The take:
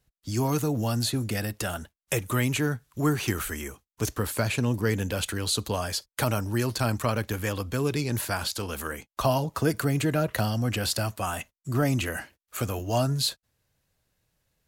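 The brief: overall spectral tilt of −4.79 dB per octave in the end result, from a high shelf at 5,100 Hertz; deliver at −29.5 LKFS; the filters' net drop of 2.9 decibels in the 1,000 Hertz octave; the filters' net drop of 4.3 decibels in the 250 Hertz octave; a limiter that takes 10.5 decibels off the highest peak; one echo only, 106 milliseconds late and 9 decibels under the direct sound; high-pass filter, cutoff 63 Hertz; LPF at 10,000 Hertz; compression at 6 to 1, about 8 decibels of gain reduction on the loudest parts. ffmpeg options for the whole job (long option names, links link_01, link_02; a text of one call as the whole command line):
ffmpeg -i in.wav -af "highpass=63,lowpass=10000,equalizer=frequency=250:width_type=o:gain=-5.5,equalizer=frequency=1000:width_type=o:gain=-3.5,highshelf=frequency=5100:gain=-4.5,acompressor=threshold=-31dB:ratio=6,alimiter=level_in=4dB:limit=-24dB:level=0:latency=1,volume=-4dB,aecho=1:1:106:0.355,volume=8dB" out.wav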